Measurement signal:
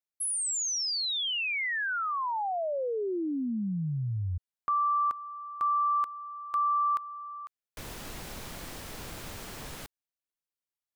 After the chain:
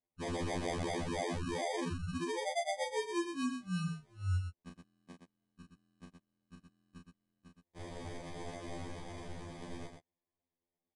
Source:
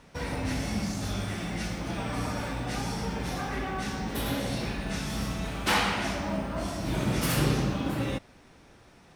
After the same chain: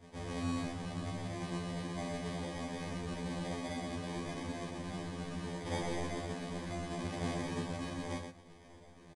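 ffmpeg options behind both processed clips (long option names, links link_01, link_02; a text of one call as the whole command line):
ffmpeg -i in.wav -af "adynamicequalizer=threshold=0.0112:dfrequency=1200:dqfactor=4.2:tfrequency=1200:tqfactor=4.2:attack=5:release=100:ratio=0.375:range=2:mode=cutabove:tftype=bell,acompressor=threshold=-39dB:ratio=2:attack=0.29:release=37:knee=6:detection=peak,acrusher=samples=32:mix=1:aa=0.000001,aecho=1:1:32.07|119.5:0.562|0.501,aresample=22050,aresample=44100,afftfilt=real='re*2*eq(mod(b,4),0)':imag='im*2*eq(mod(b,4),0)':win_size=2048:overlap=0.75" out.wav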